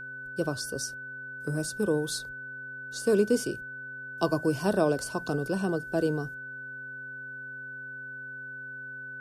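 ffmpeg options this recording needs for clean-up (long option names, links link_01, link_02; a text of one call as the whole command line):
ffmpeg -i in.wav -af "bandreject=frequency=130.7:width_type=h:width=4,bandreject=frequency=261.4:width_type=h:width=4,bandreject=frequency=392.1:width_type=h:width=4,bandreject=frequency=522.8:width_type=h:width=4,bandreject=frequency=1500:width=30" out.wav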